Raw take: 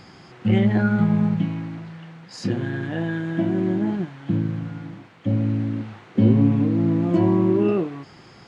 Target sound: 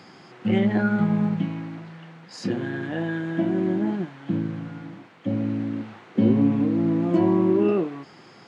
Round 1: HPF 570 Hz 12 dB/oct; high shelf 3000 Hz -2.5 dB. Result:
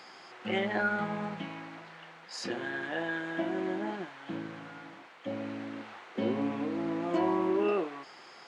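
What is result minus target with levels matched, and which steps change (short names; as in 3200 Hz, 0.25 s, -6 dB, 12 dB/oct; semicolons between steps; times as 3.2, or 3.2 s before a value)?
500 Hz band +3.0 dB
change: HPF 180 Hz 12 dB/oct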